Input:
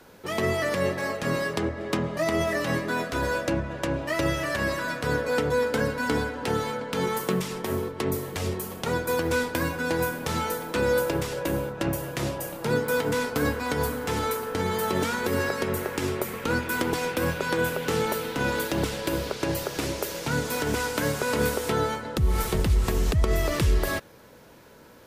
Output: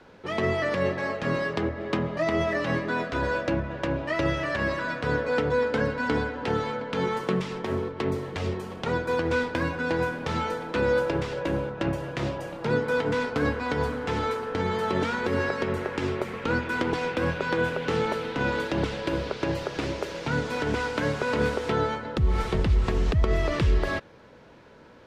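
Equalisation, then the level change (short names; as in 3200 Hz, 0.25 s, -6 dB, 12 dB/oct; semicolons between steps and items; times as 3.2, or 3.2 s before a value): LPF 3800 Hz 12 dB/oct; 0.0 dB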